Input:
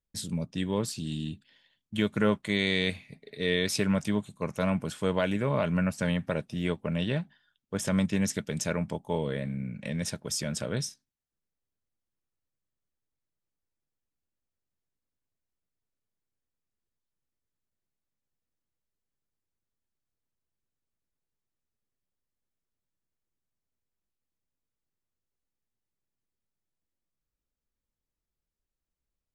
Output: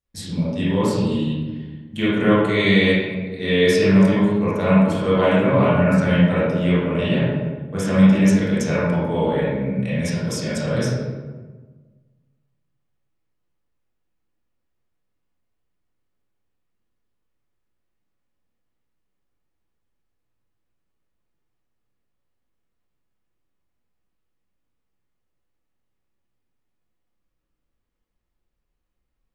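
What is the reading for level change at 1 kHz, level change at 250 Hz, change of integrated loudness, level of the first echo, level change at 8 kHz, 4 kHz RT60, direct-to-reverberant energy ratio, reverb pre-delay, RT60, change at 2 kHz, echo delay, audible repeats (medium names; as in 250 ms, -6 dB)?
+12.0 dB, +12.5 dB, +11.5 dB, no echo, +1.0 dB, 0.80 s, -10.5 dB, 22 ms, 1.4 s, +10.0 dB, no echo, no echo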